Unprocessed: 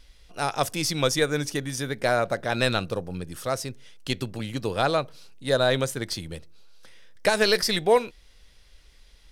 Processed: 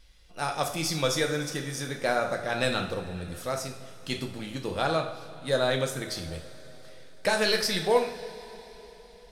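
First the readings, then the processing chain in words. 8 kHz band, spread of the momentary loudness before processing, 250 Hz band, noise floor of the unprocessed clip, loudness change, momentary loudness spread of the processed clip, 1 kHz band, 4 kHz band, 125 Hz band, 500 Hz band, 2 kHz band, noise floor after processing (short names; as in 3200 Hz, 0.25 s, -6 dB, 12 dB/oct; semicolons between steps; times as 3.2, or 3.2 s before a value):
-3.0 dB, 15 LU, -3.5 dB, -55 dBFS, -3.5 dB, 16 LU, -2.5 dB, -3.0 dB, -4.0 dB, -3.5 dB, -2.5 dB, -51 dBFS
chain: two-slope reverb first 0.5 s, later 4.2 s, from -18 dB, DRR 2 dB; gain -5 dB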